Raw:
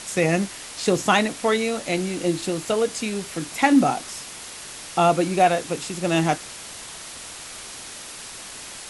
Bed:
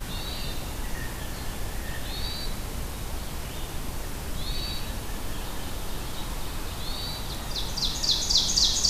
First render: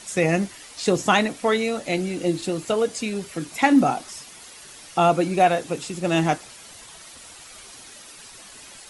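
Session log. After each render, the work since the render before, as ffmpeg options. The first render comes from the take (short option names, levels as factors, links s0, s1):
-af "afftdn=nr=9:nf=-38"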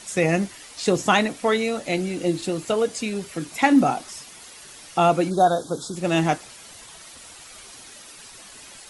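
-filter_complex "[0:a]asplit=3[s0][s1][s2];[s0]afade=t=out:st=5.29:d=0.02[s3];[s1]asuperstop=centerf=2300:order=12:qfactor=1.3,afade=t=in:st=5.29:d=0.02,afade=t=out:st=5.95:d=0.02[s4];[s2]afade=t=in:st=5.95:d=0.02[s5];[s3][s4][s5]amix=inputs=3:normalize=0"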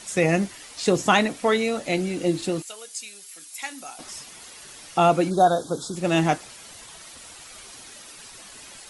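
-filter_complex "[0:a]asettb=1/sr,asplit=3[s0][s1][s2];[s0]atrim=end=2.624[s3];[s1]atrim=start=2.62:end=3.99,asetpts=PTS-STARTPTS,afade=t=in:d=0.004:c=qsin,afade=t=out:st=1.366:d=0.004:c=qsin,aderivative[s4];[s2]atrim=start=3.986[s5];[s3][s4]acrossfade=d=0.004:c1=hsin:c2=qsin[s6];[s6][s5]acrossfade=d=0.004:c1=qsin:c2=hsin"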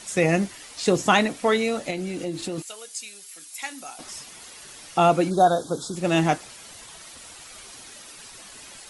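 -filter_complex "[0:a]asettb=1/sr,asplit=3[s0][s1][s2];[s0]atrim=end=1.904[s3];[s1]atrim=start=1.9:end=2.58,asetpts=PTS-STARTPTS,afade=t=in:d=0.004:c=qsin,afade=t=out:st=0.676:d=0.004:c=qsin,acompressor=threshold=0.0447:ratio=3:attack=3.2:release=140:knee=1:detection=peak[s4];[s2]atrim=start=2.576[s5];[s3][s4]acrossfade=d=0.004:c1=hsin:c2=qsin[s6];[s6][s5]acrossfade=d=0.004:c1=qsin:c2=hsin"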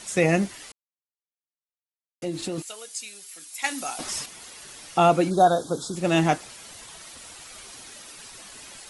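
-filter_complex "[0:a]asettb=1/sr,asplit=3[s0][s1][s2];[s0]atrim=end=3.644[s3];[s1]atrim=start=3.64:end=4.26,asetpts=PTS-STARTPTS,afade=t=in:d=0.004:c=qsin,afade=t=out:st=0.616:d=0.004:c=qsin,acontrast=81[s4];[s2]atrim=start=4.256[s5];[s3][s4]acrossfade=d=0.004:c1=hsin:c2=qsin[s6];[s6][s5]acrossfade=d=0.004:c1=qsin:c2=hsin,asplit=3[s7][s8][s9];[s7]atrim=end=0.72,asetpts=PTS-STARTPTS,afade=t=out:st=0.716:d=0.004:c=hsin[s10];[s8]atrim=start=0.72:end=2.22,asetpts=PTS-STARTPTS,volume=0[s11];[s9]atrim=start=2.22,asetpts=PTS-STARTPTS,afade=t=in:d=0.004:c=hsin[s12];[s10][s11][s12]concat=n=3:v=0:a=1"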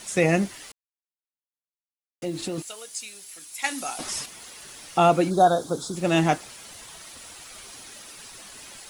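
-af "acrusher=bits=8:mix=0:aa=0.000001"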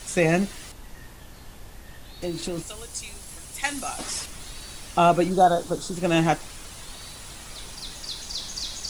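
-filter_complex "[1:a]volume=0.282[s0];[0:a][s0]amix=inputs=2:normalize=0"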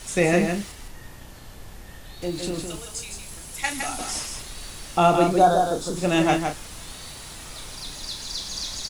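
-filter_complex "[0:a]asplit=2[s0][s1];[s1]adelay=34,volume=0.398[s2];[s0][s2]amix=inputs=2:normalize=0,asplit=2[s3][s4];[s4]aecho=0:1:161:0.531[s5];[s3][s5]amix=inputs=2:normalize=0"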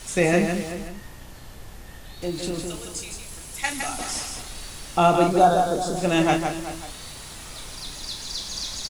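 -filter_complex "[0:a]asplit=2[s0][s1];[s1]adelay=379,volume=0.224,highshelf=f=4000:g=-8.53[s2];[s0][s2]amix=inputs=2:normalize=0"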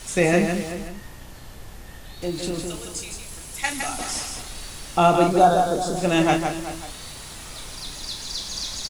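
-af "volume=1.12"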